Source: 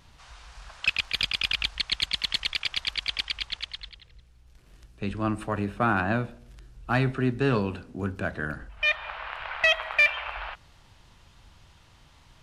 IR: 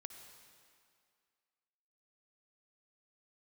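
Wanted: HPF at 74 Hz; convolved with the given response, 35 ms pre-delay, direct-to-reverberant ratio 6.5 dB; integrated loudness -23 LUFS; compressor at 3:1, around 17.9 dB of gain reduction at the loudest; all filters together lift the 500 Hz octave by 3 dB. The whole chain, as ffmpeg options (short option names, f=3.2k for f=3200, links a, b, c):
-filter_complex "[0:a]highpass=74,equalizer=f=500:t=o:g=4,acompressor=threshold=-42dB:ratio=3,asplit=2[a][b];[1:a]atrim=start_sample=2205,adelay=35[c];[b][c]afir=irnorm=-1:irlink=0,volume=-1.5dB[d];[a][d]amix=inputs=2:normalize=0,volume=17.5dB"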